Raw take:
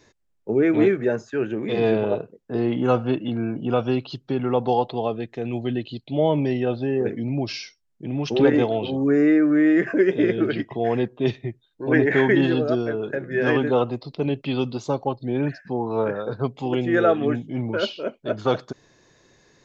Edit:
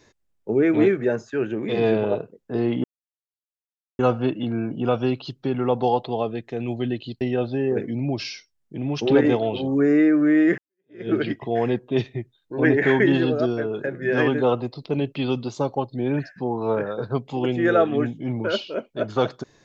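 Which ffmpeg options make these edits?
-filter_complex "[0:a]asplit=4[a][b][c][d];[a]atrim=end=2.84,asetpts=PTS-STARTPTS,afade=t=out:st=2.836:d=0.004:c=hsin,apad=pad_dur=1.15[e];[b]atrim=start=2.84:end=6.062,asetpts=PTS-STARTPTS,afade=t=in:d=0.004:c=hsin[f];[c]atrim=start=6.498:end=9.87,asetpts=PTS-STARTPTS,afade=t=out:st=3.368:d=0.004:c=hsin[g];[d]atrim=start=9.87,asetpts=PTS-STARTPTS,afade=t=in:d=0.5:c=exp[h];[e][f]concat=n=2:v=0:a=1[i];[g][h]concat=n=2:v=0:a=1[j];[i][j]acrossfade=d=0.004:c1=hsin:c2=hsin"

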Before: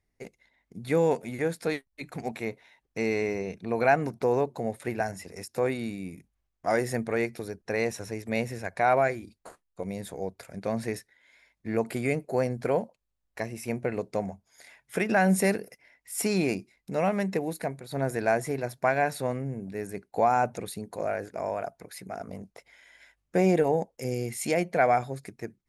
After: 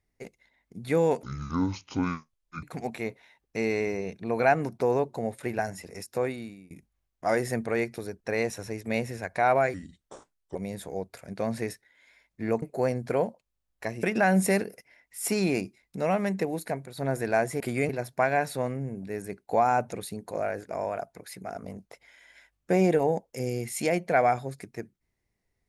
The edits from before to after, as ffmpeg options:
-filter_complex "[0:a]asplit=10[a][b][c][d][e][f][g][h][i][j];[a]atrim=end=1.234[k];[b]atrim=start=1.23:end=2.04,asetpts=PTS-STARTPTS,asetrate=25578,aresample=44100[l];[c]atrim=start=2.036:end=6.12,asetpts=PTS-STARTPTS,afade=t=out:st=3.494:d=0.59:silence=0.0841395[m];[d]atrim=start=6.12:end=9.154,asetpts=PTS-STARTPTS,afade=t=in:d=0.004:c=hsin:silence=0.0841395[n];[e]atrim=start=9.15:end=9.81,asetpts=PTS-STARTPTS,asetrate=35721,aresample=44100,atrim=end_sample=35933,asetpts=PTS-STARTPTS[o];[f]atrim=start=9.806:end=11.882[p];[g]atrim=start=12.168:end=13.582[q];[h]atrim=start=14.968:end=18.542[r];[i]atrim=start=11.878:end=12.172[s];[j]atrim=start=18.538[t];[k][l]acrossfade=d=0.004:c1=hsin:c2=hsin[u];[m][n]concat=n=2:v=0:a=1[v];[u][v]acrossfade=d=0.004:c1=hsin:c2=hsin[w];[w][o]acrossfade=d=0.004:c1=hsin:c2=hsin[x];[x][p]acrossfade=d=0.004:c1=hsin:c2=hsin[y];[y][q]acrossfade=d=0.004:c1=hsin:c2=hsin[z];[z][r]acrossfade=d=0.004:c1=hsin:c2=hsin[aa];[aa][s]acrossfade=d=0.004:c1=hsin:c2=hsin[ab];[ab][t]acrossfade=d=0.004:c1=hsin:c2=hsin"

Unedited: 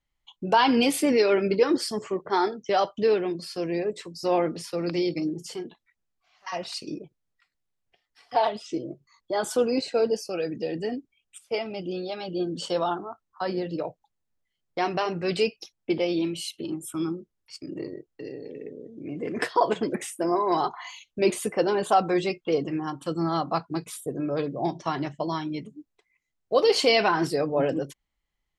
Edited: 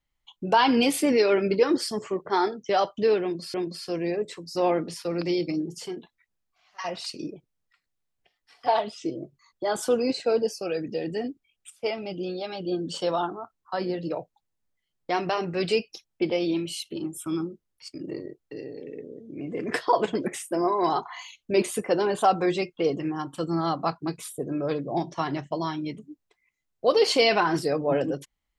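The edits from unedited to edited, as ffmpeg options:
-filter_complex "[0:a]asplit=2[a][b];[a]atrim=end=3.542[c];[b]atrim=start=3.218[d];[c][d]acrossfade=d=0.004:c1=hsin:c2=hsin"

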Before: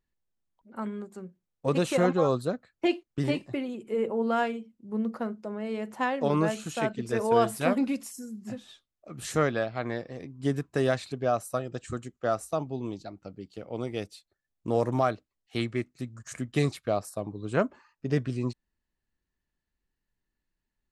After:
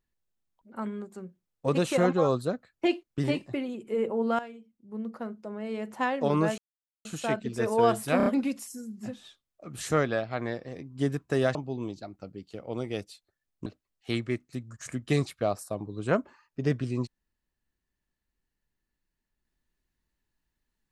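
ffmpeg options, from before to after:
-filter_complex "[0:a]asplit=8[a][b][c][d][e][f][g][h];[a]atrim=end=4.39,asetpts=PTS-STARTPTS,afade=t=out:st=4.386:d=0.004:c=hsin:silence=0.188365[i];[b]atrim=start=4.39:end=6.58,asetpts=PTS-STARTPTS,afade=t=in:d=1.6:silence=0.188365,afade=t=out:st=2.186:d=0.004:c=hsin,apad=pad_dur=0.47[j];[c]atrim=start=6.58:end=7.732,asetpts=PTS-STARTPTS,afade=t=in:d=0.004:c=hsin[k];[d]atrim=start=7.698:end=7.732[l];[e]atrim=start=7.698:end=7.732[m];[f]atrim=start=7.698:end=10.992[n];[g]atrim=start=12.578:end=14.692[o];[h]atrim=start=15.118[p];[i][j][k]concat=n=3:v=0:a=1[q];[q][l]acrossfade=d=0.004:c1=hsin:c2=hsin[r];[r][m]acrossfade=d=0.004:c1=hsin:c2=hsin[s];[s][n]acrossfade=d=0.004:c1=hsin:c2=hsin[t];[t][o]acrossfade=d=0.004:c1=hsin:c2=hsin[u];[u][p]acrossfade=d=0.004:c1=hsin:c2=hsin"

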